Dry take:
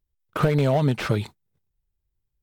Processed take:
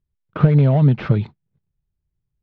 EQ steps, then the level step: LPF 4500 Hz 12 dB/oct; air absorption 180 m; bell 150 Hz +10.5 dB 1.6 oct; -1.0 dB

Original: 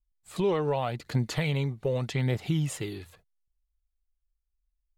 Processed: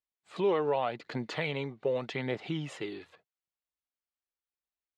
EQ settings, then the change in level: BPF 280–3500 Hz; 0.0 dB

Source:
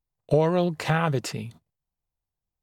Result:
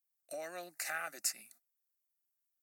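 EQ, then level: differentiator; low shelf 210 Hz -9 dB; fixed phaser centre 660 Hz, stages 8; +4.5 dB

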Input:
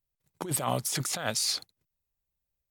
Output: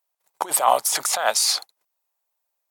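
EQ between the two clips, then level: HPF 600 Hz 12 dB/oct; bell 820 Hz +13 dB 1.6 oct; bell 12000 Hz +6.5 dB 2.2 oct; +3.5 dB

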